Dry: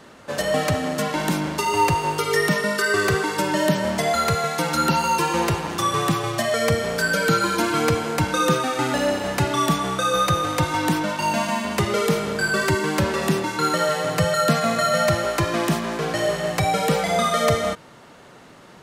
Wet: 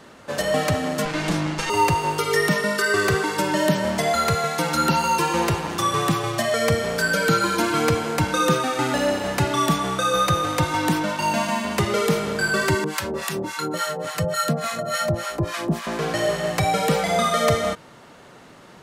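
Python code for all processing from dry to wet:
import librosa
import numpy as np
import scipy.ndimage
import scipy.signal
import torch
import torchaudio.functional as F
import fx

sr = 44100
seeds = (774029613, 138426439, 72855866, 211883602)

y = fx.chain(x, sr, fx.lower_of_two(delay_ms=6.1),
    fx.lowpass(hz=7900.0, slope=12),
    fx.doubler(ms=32.0, db=-7.5), at=(1.05, 1.7))
y = fx.chain(y, sr, fx.high_shelf(hz=7500.0, db=5.5),
    fx.harmonic_tremolo(hz=3.5, depth_pct=100, crossover_hz=810.0), at=(12.84, 15.87))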